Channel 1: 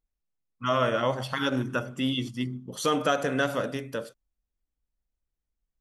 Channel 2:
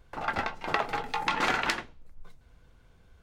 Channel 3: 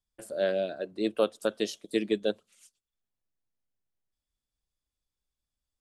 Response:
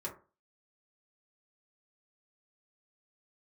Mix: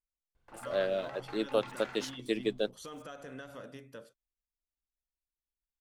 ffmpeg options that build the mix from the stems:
-filter_complex "[0:a]acompressor=threshold=-25dB:ratio=6,volume=-15dB[link_01];[1:a]adelay=350,volume=-16.5dB[link_02];[2:a]lowshelf=frequency=240:gain=-6.5,aeval=exprs='sgn(val(0))*max(abs(val(0))-0.00141,0)':channel_layout=same,adelay=350,volume=-2dB[link_03];[link_01][link_02]amix=inputs=2:normalize=0,alimiter=level_in=11dB:limit=-24dB:level=0:latency=1:release=47,volume=-11dB,volume=0dB[link_04];[link_03][link_04]amix=inputs=2:normalize=0"

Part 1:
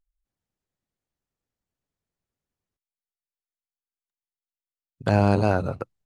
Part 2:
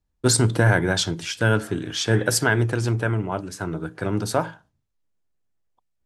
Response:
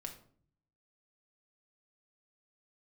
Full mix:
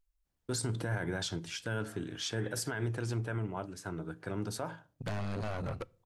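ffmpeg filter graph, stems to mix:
-filter_complex "[0:a]acompressor=threshold=-23dB:ratio=6,asoftclip=type=tanh:threshold=-34dB,volume=0.5dB,asplit=2[link_01][link_02];[link_02]volume=-16.5dB[link_03];[1:a]adelay=250,volume=-11.5dB,asplit=2[link_04][link_05];[link_05]volume=-19dB[link_06];[2:a]atrim=start_sample=2205[link_07];[link_03][link_06]amix=inputs=2:normalize=0[link_08];[link_08][link_07]afir=irnorm=-1:irlink=0[link_09];[link_01][link_04][link_09]amix=inputs=3:normalize=0,alimiter=level_in=1dB:limit=-24dB:level=0:latency=1:release=49,volume=-1dB"

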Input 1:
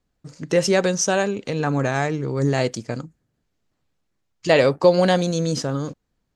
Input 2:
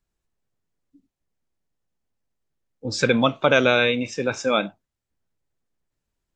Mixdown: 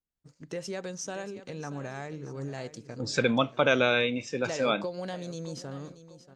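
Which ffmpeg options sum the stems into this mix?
ffmpeg -i stem1.wav -i stem2.wav -filter_complex "[0:a]acompressor=threshold=-20dB:ratio=2.5,volume=-14dB,asplit=2[link_01][link_02];[link_02]volume=-14dB[link_03];[1:a]adelay=150,volume=-6dB[link_04];[link_03]aecho=0:1:632|1264|1896|2528|3160|3792:1|0.4|0.16|0.064|0.0256|0.0102[link_05];[link_01][link_04][link_05]amix=inputs=3:normalize=0,agate=range=-9dB:threshold=-53dB:ratio=16:detection=peak" out.wav

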